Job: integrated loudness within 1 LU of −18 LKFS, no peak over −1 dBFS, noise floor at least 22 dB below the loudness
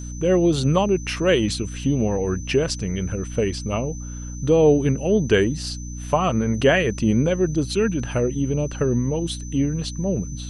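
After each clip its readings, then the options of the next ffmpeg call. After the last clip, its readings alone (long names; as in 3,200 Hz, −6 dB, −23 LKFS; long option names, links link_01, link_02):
mains hum 60 Hz; hum harmonics up to 300 Hz; level of the hum −30 dBFS; interfering tone 6,100 Hz; level of the tone −40 dBFS; integrated loudness −21.5 LKFS; sample peak −5.5 dBFS; target loudness −18.0 LKFS
→ -af "bandreject=frequency=60:width_type=h:width=4,bandreject=frequency=120:width_type=h:width=4,bandreject=frequency=180:width_type=h:width=4,bandreject=frequency=240:width_type=h:width=4,bandreject=frequency=300:width_type=h:width=4"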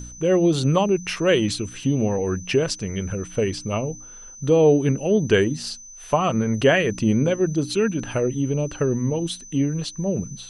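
mains hum none found; interfering tone 6,100 Hz; level of the tone −40 dBFS
→ -af "bandreject=frequency=6100:width=30"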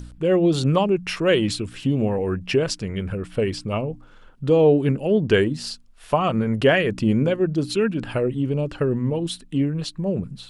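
interfering tone none found; integrated loudness −22.0 LKFS; sample peak −5.5 dBFS; target loudness −18.0 LKFS
→ -af "volume=4dB"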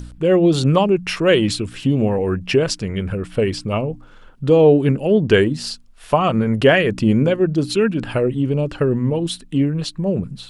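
integrated loudness −18.0 LKFS; sample peak −1.5 dBFS; background noise floor −43 dBFS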